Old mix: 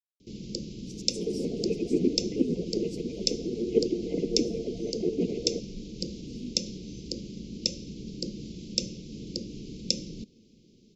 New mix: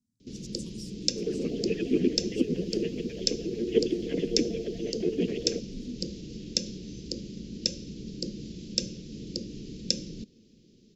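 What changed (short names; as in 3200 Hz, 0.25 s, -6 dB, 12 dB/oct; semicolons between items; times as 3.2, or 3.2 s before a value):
speech: entry -0.55 s; second sound: remove LPF 1600 Hz; master: remove brick-wall FIR band-stop 1000–2000 Hz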